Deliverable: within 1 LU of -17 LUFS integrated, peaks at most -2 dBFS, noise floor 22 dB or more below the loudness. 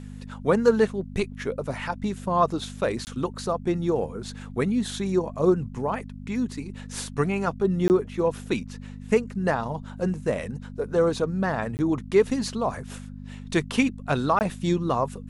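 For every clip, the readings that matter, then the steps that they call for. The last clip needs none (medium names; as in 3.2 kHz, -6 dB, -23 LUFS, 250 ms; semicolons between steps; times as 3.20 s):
dropouts 4; longest dropout 19 ms; hum 50 Hz; highest harmonic 250 Hz; hum level -36 dBFS; loudness -26.0 LUFS; peak level -6.5 dBFS; loudness target -17.0 LUFS
-> interpolate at 3.05/7.88/11.77/14.39 s, 19 ms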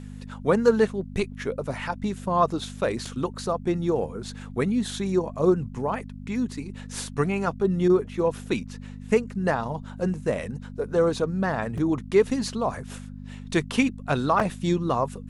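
dropouts 0; hum 50 Hz; highest harmonic 250 Hz; hum level -36 dBFS
-> de-hum 50 Hz, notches 5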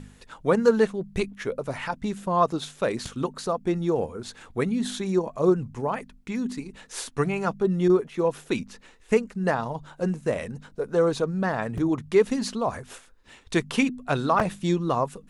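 hum not found; loudness -26.0 LUFS; peak level -6.5 dBFS; loudness target -17.0 LUFS
-> trim +9 dB; peak limiter -2 dBFS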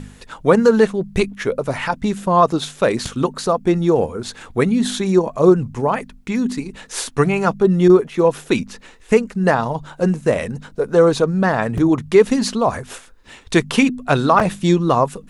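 loudness -17.5 LUFS; peak level -2.0 dBFS; noise floor -45 dBFS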